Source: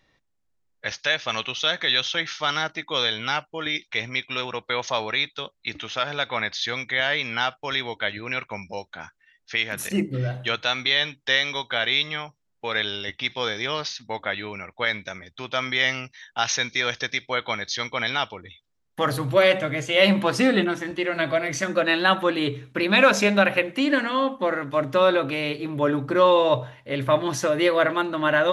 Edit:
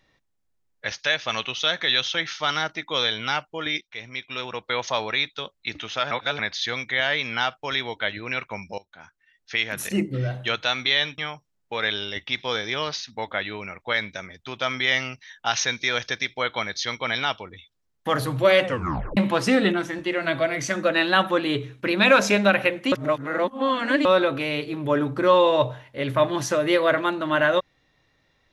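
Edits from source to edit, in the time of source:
3.81–4.74 fade in, from -15 dB
6.11–6.39 reverse
8.78–9.57 fade in, from -18 dB
11.18–12.1 cut
19.57 tape stop 0.52 s
23.84–24.97 reverse

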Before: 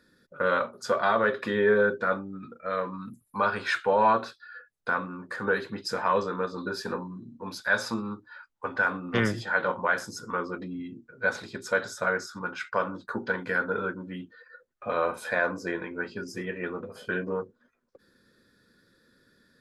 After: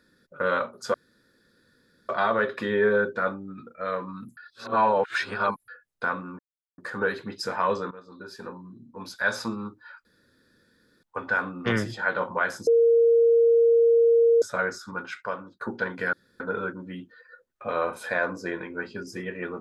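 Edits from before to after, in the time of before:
0.94 insert room tone 1.15 s
3.22–4.53 reverse
5.24 insert silence 0.39 s
6.37–7.8 fade in, from -17.5 dB
8.51 insert room tone 0.98 s
10.15–11.9 bleep 464 Hz -15 dBFS
12.49–13.09 fade out, to -14.5 dB
13.61 insert room tone 0.27 s

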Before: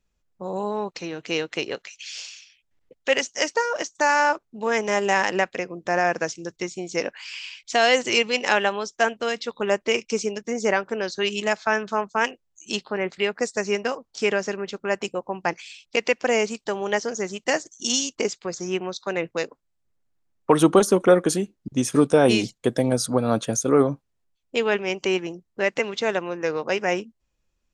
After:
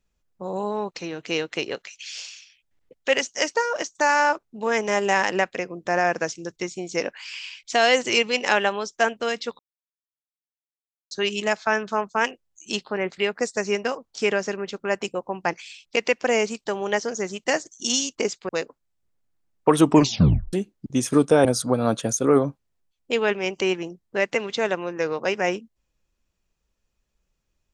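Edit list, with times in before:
9.59–11.11 mute
18.49–19.31 cut
20.64 tape stop 0.71 s
22.27–22.89 cut

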